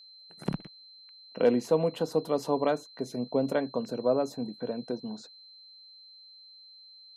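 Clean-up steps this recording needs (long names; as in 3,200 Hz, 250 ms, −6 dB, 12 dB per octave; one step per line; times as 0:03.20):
clipped peaks rebuilt −13 dBFS
notch filter 4,100 Hz, Q 30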